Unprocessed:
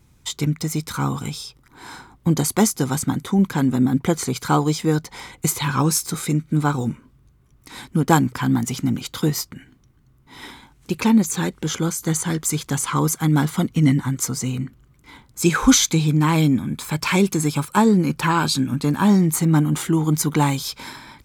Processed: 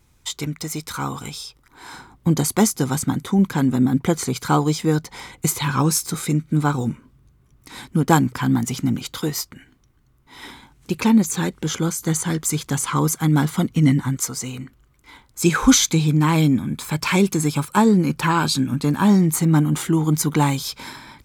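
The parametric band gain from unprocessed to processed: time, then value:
parametric band 160 Hz 2 octaves
−7 dB
from 0:01.93 +0.5 dB
from 0:09.15 −6 dB
from 0:10.45 +0.5 dB
from 0:14.17 −8.5 dB
from 0:15.42 +0.5 dB

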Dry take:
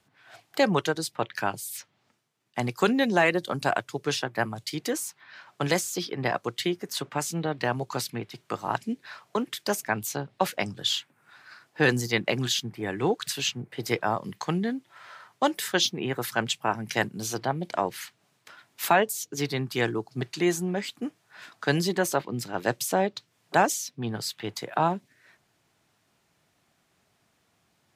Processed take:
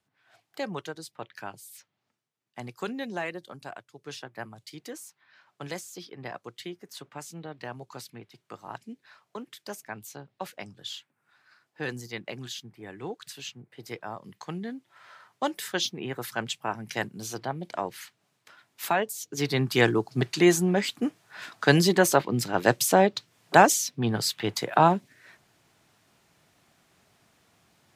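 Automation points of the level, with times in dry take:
0:03.19 −11 dB
0:03.91 −18 dB
0:04.15 −11.5 dB
0:14.07 −11.5 dB
0:15.10 −4.5 dB
0:19.16 −4.5 dB
0:19.64 +5 dB

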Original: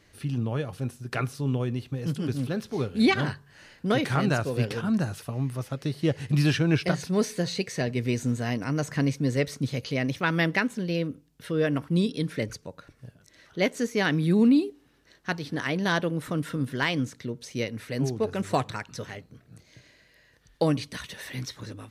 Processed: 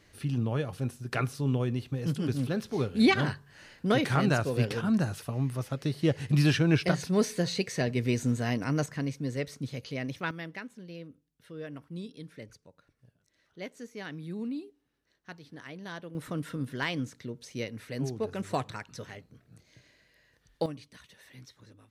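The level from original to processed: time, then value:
−1 dB
from 0:08.86 −7.5 dB
from 0:10.31 −16 dB
from 0:16.15 −5.5 dB
from 0:20.66 −16 dB

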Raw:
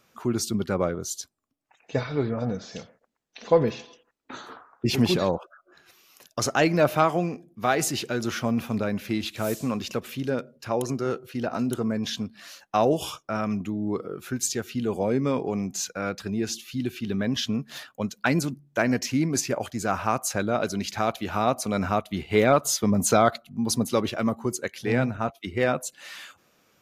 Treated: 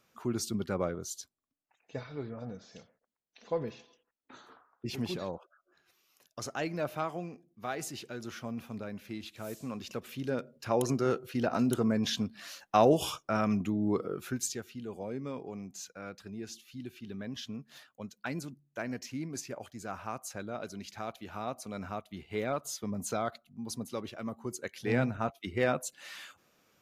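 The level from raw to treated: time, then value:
0:00.96 −7 dB
0:02.00 −13.5 dB
0:09.47 −13.5 dB
0:10.84 −1.5 dB
0:14.17 −1.5 dB
0:14.77 −14 dB
0:24.21 −14 dB
0:24.93 −5 dB

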